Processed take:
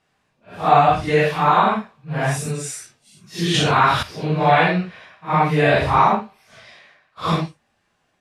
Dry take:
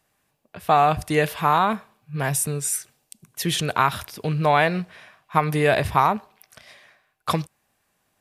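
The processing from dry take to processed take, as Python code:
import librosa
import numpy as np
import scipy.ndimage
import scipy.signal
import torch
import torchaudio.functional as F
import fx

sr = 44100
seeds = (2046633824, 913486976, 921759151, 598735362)

y = fx.phase_scramble(x, sr, seeds[0], window_ms=200)
y = scipy.signal.sosfilt(scipy.signal.butter(2, 5400.0, 'lowpass', fs=sr, output='sos'), y)
y = fx.env_flatten(y, sr, amount_pct=50, at=(3.54, 4.03))
y = y * librosa.db_to_amplitude(4.0)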